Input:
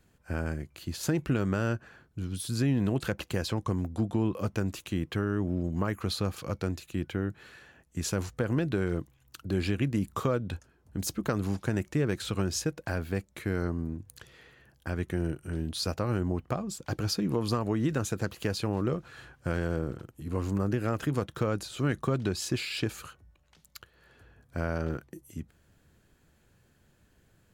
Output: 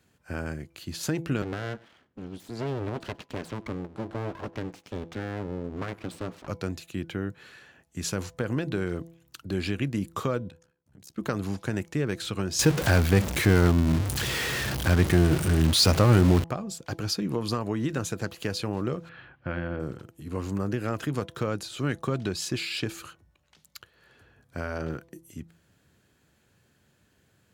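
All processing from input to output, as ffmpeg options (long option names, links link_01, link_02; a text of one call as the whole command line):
ffmpeg -i in.wav -filter_complex "[0:a]asettb=1/sr,asplit=3[link_01][link_02][link_03];[link_01]atrim=end=1.424[link_04];[link_02]atrim=start=1.42:end=6.48,asetpts=PTS-STARTPTS,afade=type=in:duration=0.004:curve=qsin,afade=type=out:start_time=5.056:duration=0.004:curve=qsin,lowpass=frequency=1300:poles=1,aeval=exprs='abs(val(0))':channel_layout=same,aecho=1:1:97:0.0708,atrim=end_sample=223146[link_05];[link_03]atrim=start=6.476[link_06];[link_04][link_05]acrossfade=duration=0.004:curve1=hsin:curve2=qsin[link_07];[link_07][link_06]acrossfade=duration=0.004:curve1=qsin:curve2=hsin,asettb=1/sr,asplit=3[link_08][link_09][link_10];[link_08]atrim=end=10.494[link_11];[link_09]atrim=start=10.49:end=11.18,asetpts=PTS-STARTPTS,afade=type=in:duration=0.004:curve=qsin,afade=type=out:start_time=0.686:duration=0.004:curve=qsin,agate=range=-33dB:threshold=-58dB:ratio=3:release=100:detection=peak,acompressor=threshold=-46dB:ratio=4:attack=3.2:release=140:knee=1:detection=peak,tremolo=f=67:d=0.974[link_12];[link_10]atrim=start=11.176[link_13];[link_11][link_12]acrossfade=duration=0.004:curve1=hsin:curve2=qsin[link_14];[link_14][link_13]acrossfade=duration=0.004:curve1=qsin:curve2=hsin,asettb=1/sr,asplit=3[link_15][link_16][link_17];[link_15]atrim=end=12.594[link_18];[link_16]atrim=start=12.59:end=16.44,asetpts=PTS-STARTPTS,afade=type=in:duration=0.004:curve=qsin,afade=type=out:start_time=3.846:duration=0.004:curve=qsin,aeval=exprs='val(0)+0.5*0.0224*sgn(val(0))':channel_layout=same,lowshelf=frequency=110:gain=9,acontrast=86[link_19];[link_17]atrim=start=16.436[link_20];[link_18][link_19]acrossfade=duration=0.004:curve1=hsin:curve2=qsin[link_21];[link_21][link_20]acrossfade=duration=0.004:curve1=qsin:curve2=hsin,asettb=1/sr,asplit=3[link_22][link_23][link_24];[link_22]atrim=end=19.094[link_25];[link_23]atrim=start=19.09:end=19.8,asetpts=PTS-STARTPTS,afade=type=in:duration=0.004:curve=qsin,afade=type=out:start_time=0.706:duration=0.004:curve=qsin,lowpass=frequency=3100:width=0.5412,lowpass=frequency=3100:width=1.3066,bandreject=frequency=430:width=6.6[link_26];[link_24]atrim=start=19.796[link_27];[link_25][link_26]acrossfade=duration=0.004:curve1=hsin:curve2=qsin[link_28];[link_28][link_27]acrossfade=duration=0.004:curve1=qsin:curve2=hsin,highpass=84,equalizer=frequency=3800:width_type=o:width=2.2:gain=3,bandreject=frequency=166.8:width_type=h:width=4,bandreject=frequency=333.6:width_type=h:width=4,bandreject=frequency=500.4:width_type=h:width=4,bandreject=frequency=667.2:width_type=h:width=4,bandreject=frequency=834:width_type=h:width=4,bandreject=frequency=1000.8:width_type=h:width=4" out.wav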